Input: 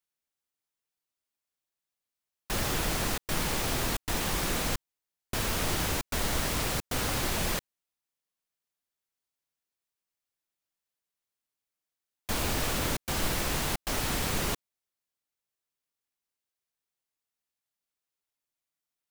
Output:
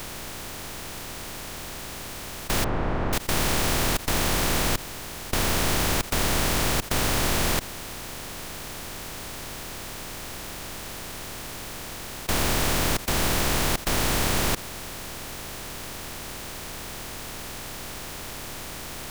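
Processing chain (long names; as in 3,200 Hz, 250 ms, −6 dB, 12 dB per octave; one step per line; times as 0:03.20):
compressor on every frequency bin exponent 0.2
0:02.64–0:03.13: low-pass filter 1,300 Hz 12 dB per octave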